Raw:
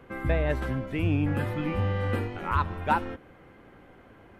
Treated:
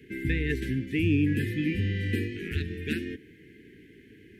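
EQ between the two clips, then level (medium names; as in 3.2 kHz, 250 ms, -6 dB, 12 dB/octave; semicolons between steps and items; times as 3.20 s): high-pass 140 Hz 6 dB/octave; Chebyshev band-stop 440–1700 Hz, order 5; +4.5 dB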